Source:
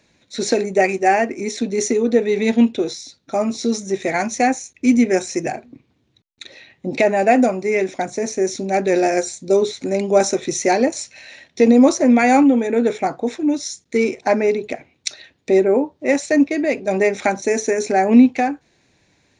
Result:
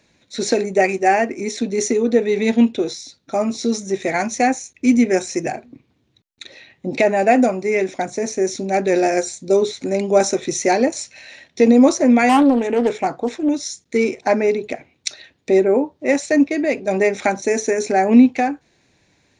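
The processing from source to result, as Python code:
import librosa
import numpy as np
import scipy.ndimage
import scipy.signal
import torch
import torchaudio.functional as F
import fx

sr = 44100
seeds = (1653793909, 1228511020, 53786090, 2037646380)

y = fx.doppler_dist(x, sr, depth_ms=0.4, at=(12.29, 13.49))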